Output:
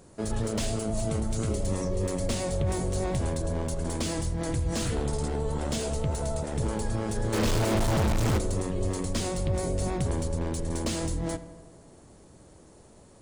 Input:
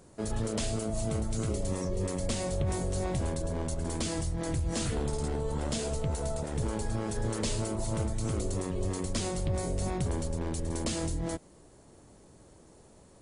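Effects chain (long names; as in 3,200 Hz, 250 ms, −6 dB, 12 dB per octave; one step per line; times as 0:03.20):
pitch vibrato 10 Hz 21 cents
0:07.33–0:08.38: log-companded quantiser 2 bits
on a send: feedback echo with a low-pass in the loop 83 ms, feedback 72%, low-pass 2,700 Hz, level −14.5 dB
on the sum: slew-rate limiting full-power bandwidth 120 Hz
level +2.5 dB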